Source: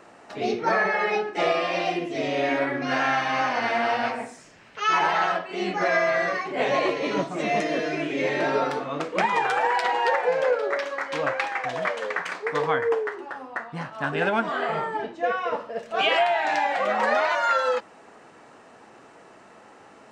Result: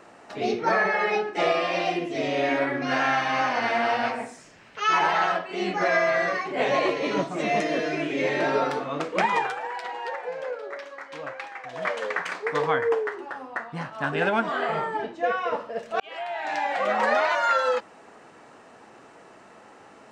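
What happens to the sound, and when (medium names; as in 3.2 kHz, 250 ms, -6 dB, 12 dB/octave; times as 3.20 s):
9.36–11.91 s: dip -10 dB, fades 0.20 s
16.00–16.90 s: fade in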